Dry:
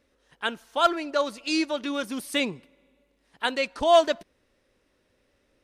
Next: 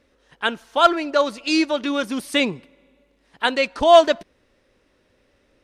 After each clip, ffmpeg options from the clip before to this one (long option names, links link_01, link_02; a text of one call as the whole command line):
ffmpeg -i in.wav -af "highshelf=frequency=9600:gain=-10,volume=6.5dB" out.wav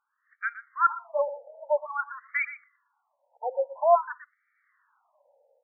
ffmpeg -i in.wav -filter_complex "[0:a]asplit=2[link_01][link_02];[link_02]adelay=120,highpass=300,lowpass=3400,asoftclip=type=hard:threshold=-11.5dB,volume=-13dB[link_03];[link_01][link_03]amix=inputs=2:normalize=0,dynaudnorm=framelen=170:gausssize=5:maxgain=11.5dB,afftfilt=real='re*between(b*sr/1024,640*pow(1700/640,0.5+0.5*sin(2*PI*0.5*pts/sr))/1.41,640*pow(1700/640,0.5+0.5*sin(2*PI*0.5*pts/sr))*1.41)':imag='im*between(b*sr/1024,640*pow(1700/640,0.5+0.5*sin(2*PI*0.5*pts/sr))/1.41,640*pow(1700/640,0.5+0.5*sin(2*PI*0.5*pts/sr))*1.41)':win_size=1024:overlap=0.75,volume=-7dB" out.wav